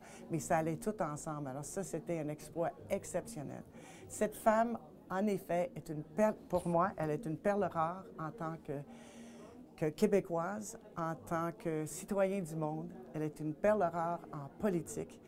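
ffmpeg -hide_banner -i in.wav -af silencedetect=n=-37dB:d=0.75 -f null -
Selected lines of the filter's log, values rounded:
silence_start: 8.79
silence_end: 9.82 | silence_duration: 1.03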